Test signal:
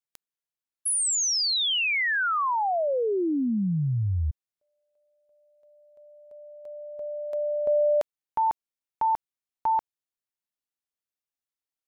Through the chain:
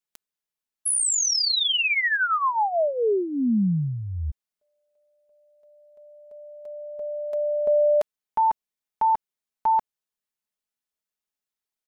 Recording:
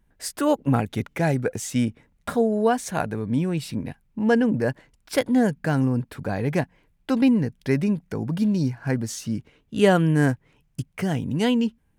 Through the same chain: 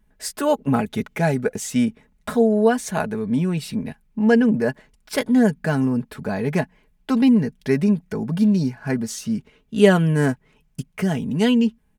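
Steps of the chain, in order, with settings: comb 4.7 ms, depth 57%; gain +1 dB

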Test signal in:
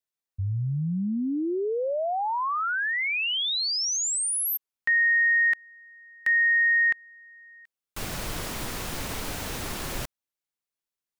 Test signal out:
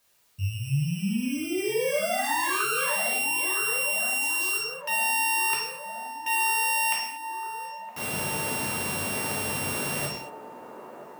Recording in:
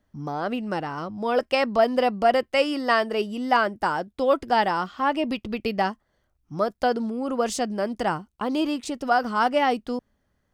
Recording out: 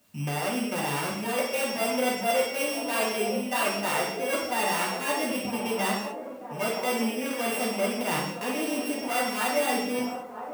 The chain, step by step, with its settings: sample sorter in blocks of 16 samples; HPF 140 Hz 12 dB/oct; reverse; compressor 4:1, threshold -34 dBFS; reverse; requantised 12-bit, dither triangular; on a send: band-limited delay 0.965 s, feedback 67%, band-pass 590 Hz, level -8.5 dB; on the sum: non-linear reverb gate 0.26 s falling, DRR -5 dB; gain +1.5 dB

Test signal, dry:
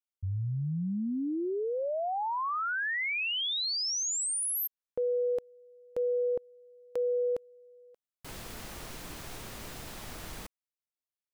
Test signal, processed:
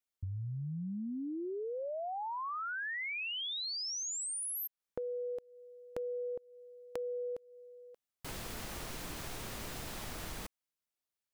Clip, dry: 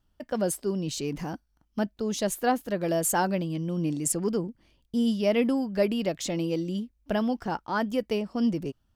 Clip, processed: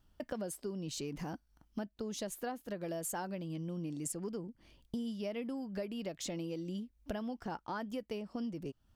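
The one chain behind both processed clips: compressor 6:1, threshold -40 dBFS; gain +2 dB

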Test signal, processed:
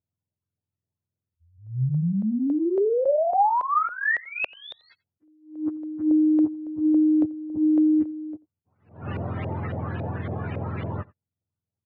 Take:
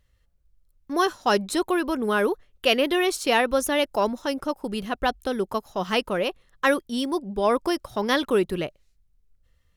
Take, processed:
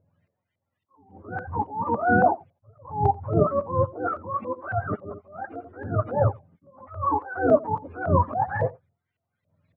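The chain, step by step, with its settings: spectrum mirrored in octaves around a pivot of 550 Hz; air absorption 470 m; LFO low-pass saw up 3.6 Hz 570–2700 Hz; in parallel at -2 dB: compressor, threshold -31 dBFS; on the sum: bell 180 Hz -4 dB 2.1 oct; on a send: echo 88 ms -23.5 dB; on the sum: attack slew limiter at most 130 dB/s; gain +4 dB

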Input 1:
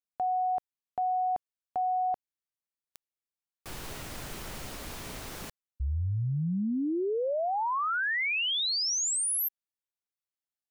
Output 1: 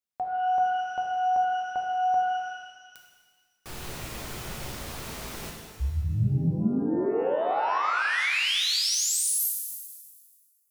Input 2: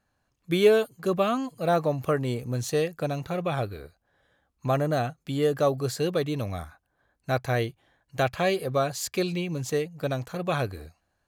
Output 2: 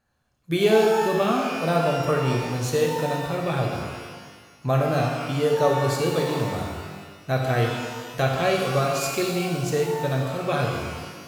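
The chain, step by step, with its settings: shimmer reverb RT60 1.6 s, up +12 st, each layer -8 dB, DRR 0 dB

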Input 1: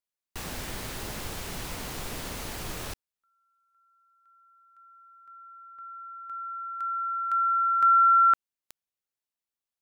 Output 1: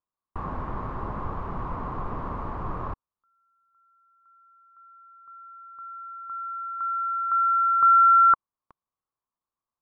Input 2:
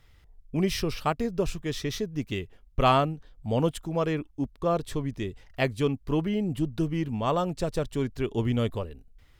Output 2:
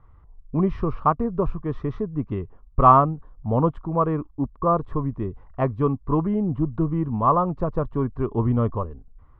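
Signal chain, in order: synth low-pass 1100 Hz, resonance Q 6.5; low shelf 410 Hz +9.5 dB; gain -3 dB

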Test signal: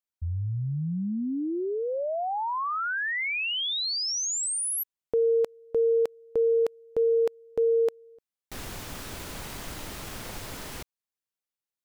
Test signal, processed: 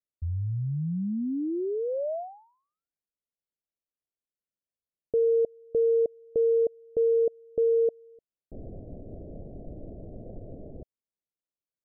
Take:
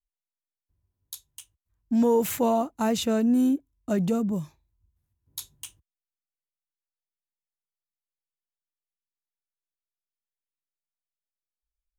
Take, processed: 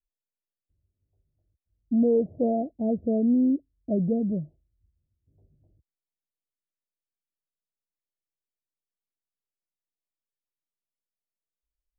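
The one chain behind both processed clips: steep low-pass 670 Hz 72 dB/oct

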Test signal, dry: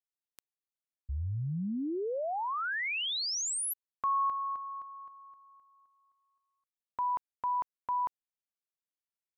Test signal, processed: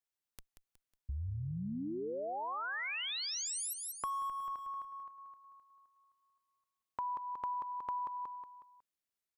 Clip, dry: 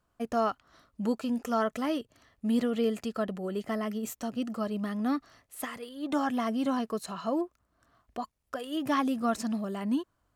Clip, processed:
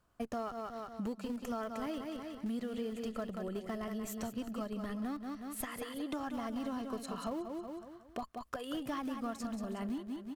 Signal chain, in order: in parallel at -10.5 dB: Schmitt trigger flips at -26.5 dBFS; on the sum: feedback echo 0.183 s, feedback 39%, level -8.5 dB; compressor 5:1, threshold -38 dBFS; gain +1 dB

